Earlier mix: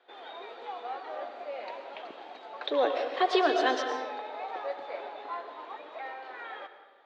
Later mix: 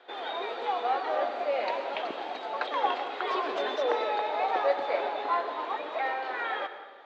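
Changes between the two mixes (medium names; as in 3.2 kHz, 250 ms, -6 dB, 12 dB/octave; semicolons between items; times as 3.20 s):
speech -11.0 dB; background +9.5 dB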